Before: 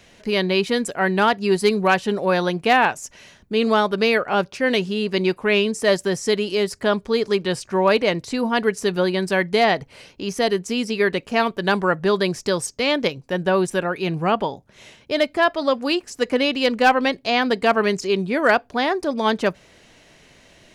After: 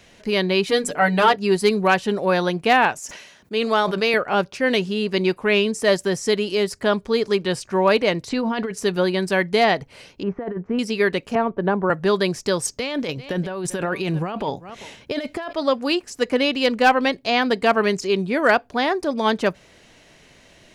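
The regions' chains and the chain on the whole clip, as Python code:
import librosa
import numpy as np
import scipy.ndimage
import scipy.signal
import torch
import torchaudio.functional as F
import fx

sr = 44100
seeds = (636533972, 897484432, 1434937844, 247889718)

y = fx.chain(x, sr, fx.hum_notches(base_hz=50, count=10),
    fx.comb(ms=6.7, depth=0.88), at=(0.67, 1.36))
y = fx.chain(y, sr, fx.highpass(hz=380.0, slope=6),
    fx.sustainer(db_per_s=61.0), at=(2.99, 4.14))
y = fx.chain(y, sr, fx.lowpass(hz=5200.0, slope=12),
    fx.over_compress(threshold_db=-23.0, ratio=-1.0), at=(8.29, 8.71))
y = fx.chain(y, sr, fx.lowpass(hz=1600.0, slope=24),
    fx.over_compress(threshold_db=-23.0, ratio=-0.5), at=(10.23, 10.79))
y = fx.chain(y, sr, fx.lowpass(hz=1100.0, slope=12),
    fx.band_squash(depth_pct=70), at=(11.35, 11.9))
y = fx.chain(y, sr, fx.echo_single(ms=392, db=-24.0),
    fx.over_compress(threshold_db=-25.0, ratio=-1.0), at=(12.65, 15.53))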